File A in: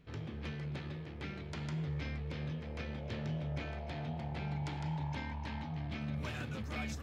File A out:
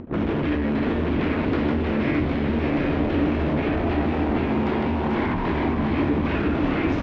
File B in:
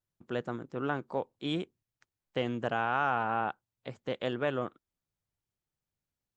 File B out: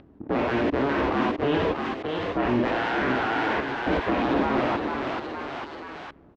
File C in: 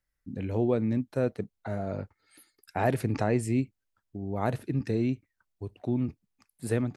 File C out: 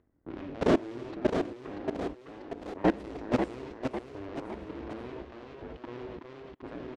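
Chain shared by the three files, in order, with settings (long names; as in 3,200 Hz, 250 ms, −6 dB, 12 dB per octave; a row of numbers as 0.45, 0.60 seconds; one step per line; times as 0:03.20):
sub-harmonics by changed cycles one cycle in 2, inverted
high-pass filter 49 Hz 6 dB per octave
slap from a distant wall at 44 metres, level −23 dB
reverb whose tail is shaped and stops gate 110 ms flat, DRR 1 dB
output level in coarse steps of 23 dB
leveller curve on the samples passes 2
low-pass that shuts in the quiet parts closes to 570 Hz, open at −30.5 dBFS
parametric band 290 Hz +12 dB 0.68 octaves
upward compression, threshold −44 dBFS
high-frequency loss of the air 110 metres
delay with pitch and tempo change per echo 701 ms, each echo +1 semitone, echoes 3, each echo −6 dB
one half of a high-frequency compander encoder only
normalise the peak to −12 dBFS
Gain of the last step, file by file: +13.5, +13.0, −5.5 decibels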